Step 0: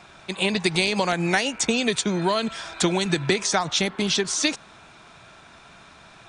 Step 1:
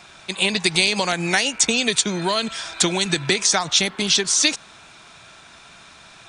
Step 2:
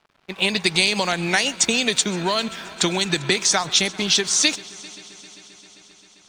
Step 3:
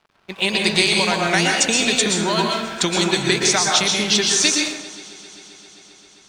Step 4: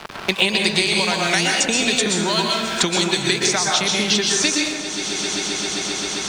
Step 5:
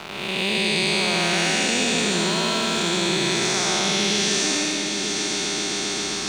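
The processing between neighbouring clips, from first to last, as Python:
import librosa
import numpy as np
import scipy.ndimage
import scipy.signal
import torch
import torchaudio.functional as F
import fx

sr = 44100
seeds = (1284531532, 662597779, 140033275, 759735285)

y1 = fx.high_shelf(x, sr, hz=2200.0, db=9.5)
y1 = F.gain(torch.from_numpy(y1), -1.0).numpy()
y2 = fx.env_lowpass(y1, sr, base_hz=1300.0, full_db=-14.0)
y2 = np.sign(y2) * np.maximum(np.abs(y2) - 10.0 ** (-46.5 / 20.0), 0.0)
y2 = fx.echo_heads(y2, sr, ms=132, heads='first and third', feedback_pct=73, wet_db=-23.5)
y3 = fx.rev_plate(y2, sr, seeds[0], rt60_s=0.85, hf_ratio=0.55, predelay_ms=105, drr_db=-0.5)
y4 = fx.band_squash(y3, sr, depth_pct=100)
y4 = F.gain(torch.from_numpy(y4), -1.5).numpy()
y5 = fx.spec_blur(y4, sr, span_ms=375.0)
y5 = y5 + 10.0 ** (-9.5 / 20.0) * np.pad(y5, (int(757 * sr / 1000.0), 0))[:len(y5)]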